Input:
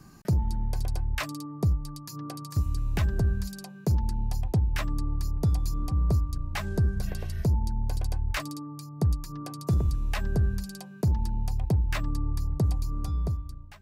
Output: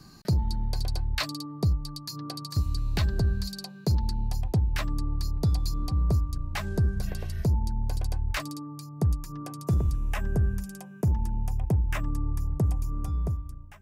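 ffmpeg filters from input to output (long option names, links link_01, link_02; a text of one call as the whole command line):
ffmpeg -i in.wav -af "asetnsamples=nb_out_samples=441:pad=0,asendcmd='4.28 equalizer g 3.5;5.19 equalizer g 10;6.02 equalizer g 1;8.91 equalizer g -6;9.97 equalizer g -15',equalizer=frequency=4300:width_type=o:width=0.41:gain=13" out.wav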